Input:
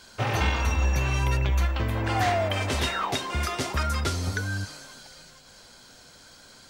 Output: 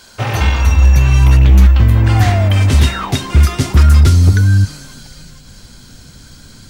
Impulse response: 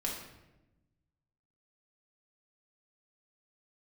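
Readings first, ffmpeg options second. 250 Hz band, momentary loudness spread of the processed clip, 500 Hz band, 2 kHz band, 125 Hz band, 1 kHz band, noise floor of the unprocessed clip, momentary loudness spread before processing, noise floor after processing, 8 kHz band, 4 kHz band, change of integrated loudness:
+14.0 dB, 7 LU, +5.5 dB, +7.0 dB, +18.5 dB, +5.5 dB, -51 dBFS, 9 LU, -40 dBFS, +9.0 dB, +7.5 dB, +15.5 dB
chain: -af "asubboost=boost=7.5:cutoff=220,aeval=exprs='0.376*(abs(mod(val(0)/0.376+3,4)-2)-1)':c=same,crystalizer=i=0.5:c=0,volume=7dB"

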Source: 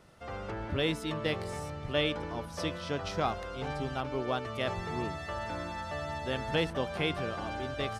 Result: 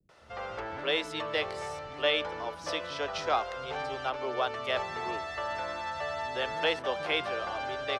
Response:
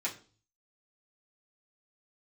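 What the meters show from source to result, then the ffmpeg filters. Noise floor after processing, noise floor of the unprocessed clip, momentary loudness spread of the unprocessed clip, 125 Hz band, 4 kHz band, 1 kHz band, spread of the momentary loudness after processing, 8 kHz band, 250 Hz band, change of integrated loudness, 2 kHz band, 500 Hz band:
-43 dBFS, -42 dBFS, 7 LU, -12.0 dB, +3.5 dB, +3.5 dB, 8 LU, 0.0 dB, -7.5 dB, +2.0 dB, +4.0 dB, +1.5 dB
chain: -filter_complex "[0:a]acrossover=split=380 7200:gain=0.2 1 0.2[a][b][c];[a][b][c]amix=inputs=3:normalize=0,acrossover=split=260|530|6200[d][e][f][g];[d]alimiter=level_in=23dB:limit=-24dB:level=0:latency=1,volume=-23dB[h];[h][e][f][g]amix=inputs=4:normalize=0,acrossover=split=240[i][j];[j]adelay=90[k];[i][k]amix=inputs=2:normalize=0,volume=4dB"

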